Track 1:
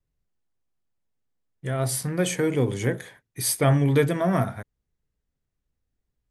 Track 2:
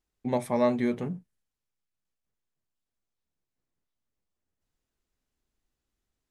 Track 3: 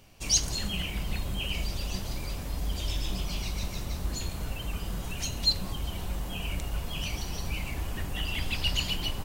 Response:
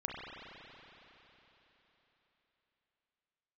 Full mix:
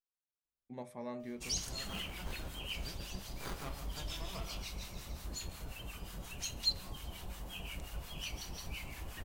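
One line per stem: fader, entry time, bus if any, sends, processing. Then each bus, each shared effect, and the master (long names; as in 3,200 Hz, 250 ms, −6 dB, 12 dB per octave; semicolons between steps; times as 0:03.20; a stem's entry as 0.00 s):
−13.5 dB, 0.00 s, no send, echo send −7.5 dB, high-pass filter 1,000 Hz 24 dB per octave; windowed peak hold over 17 samples
−17.5 dB, 0.45 s, no send, no echo send, no processing
−4.5 dB, 1.20 s, no send, no echo send, low-shelf EQ 440 Hz −5 dB; two-band tremolo in antiphase 5.6 Hz, depth 70%, crossover 960 Hz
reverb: not used
echo: single-tap delay 145 ms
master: hum removal 101.9 Hz, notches 33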